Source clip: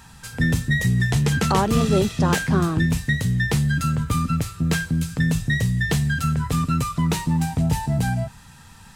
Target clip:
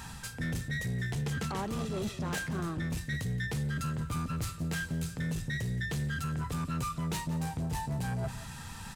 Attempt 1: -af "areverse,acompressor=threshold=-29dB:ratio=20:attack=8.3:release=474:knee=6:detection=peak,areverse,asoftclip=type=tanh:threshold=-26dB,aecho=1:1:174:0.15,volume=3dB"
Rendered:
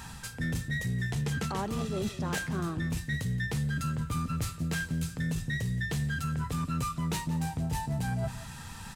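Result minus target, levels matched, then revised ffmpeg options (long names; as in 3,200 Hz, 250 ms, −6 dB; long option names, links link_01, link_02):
soft clipping: distortion −8 dB
-af "areverse,acompressor=threshold=-29dB:ratio=20:attack=8.3:release=474:knee=6:detection=peak,areverse,asoftclip=type=tanh:threshold=-32dB,aecho=1:1:174:0.15,volume=3dB"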